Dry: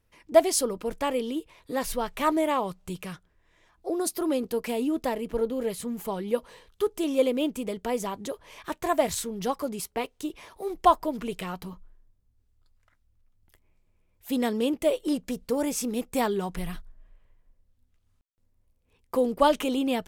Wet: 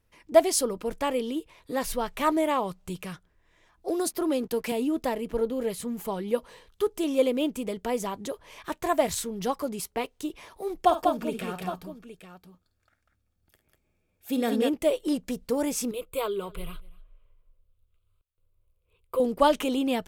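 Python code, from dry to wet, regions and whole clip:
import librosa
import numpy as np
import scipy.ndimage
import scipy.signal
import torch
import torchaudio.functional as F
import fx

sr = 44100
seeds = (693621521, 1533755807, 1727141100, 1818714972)

y = fx.chain(x, sr, fx.backlash(play_db=-51.5),
    fx.band_squash(depth_pct=40), at=(3.88, 4.72))
y = fx.chain(y, sr, fx.notch_comb(f0_hz=1000.0),
    fx.echo_multitap(ms=(51, 69, 195, 815), db=(-10.5, -18.5, -4.0, -12.5)), at=(10.83, 14.69))
y = fx.chain(y, sr, fx.fixed_phaser(hz=1200.0, stages=8),
    fx.echo_single(ms=242, db=-23.0), at=(15.91, 19.2))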